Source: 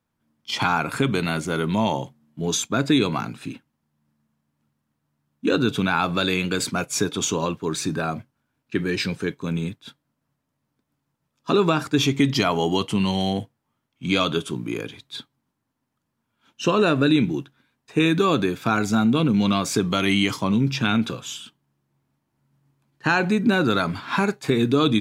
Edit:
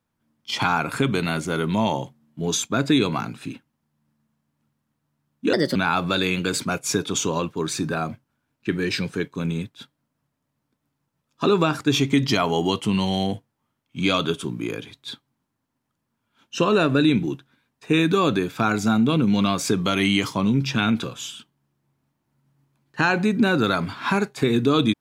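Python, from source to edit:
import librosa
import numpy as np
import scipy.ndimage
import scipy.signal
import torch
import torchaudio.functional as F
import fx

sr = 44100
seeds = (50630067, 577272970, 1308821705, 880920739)

y = fx.edit(x, sr, fx.speed_span(start_s=5.53, length_s=0.29, speed=1.29), tone=tone)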